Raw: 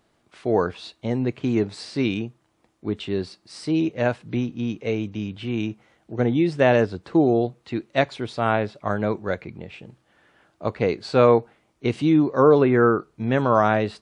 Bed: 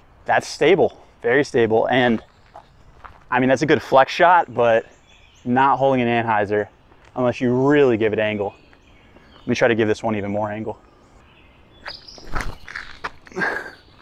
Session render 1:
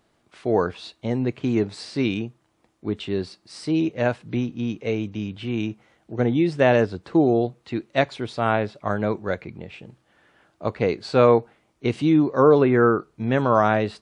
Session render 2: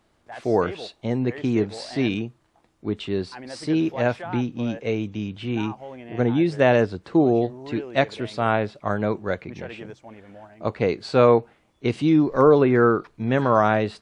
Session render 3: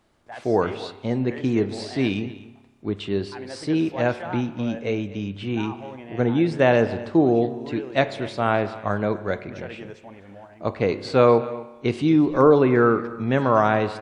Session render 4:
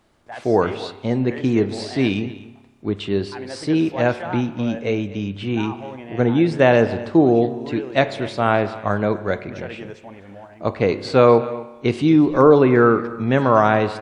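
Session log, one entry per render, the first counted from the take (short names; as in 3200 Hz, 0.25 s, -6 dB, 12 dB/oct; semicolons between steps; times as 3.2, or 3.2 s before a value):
nothing audible
add bed -21.5 dB
echo 0.248 s -18 dB; spring tank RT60 1.2 s, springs 30 ms, chirp 25 ms, DRR 12.5 dB
gain +3.5 dB; limiter -1 dBFS, peak gain reduction 1 dB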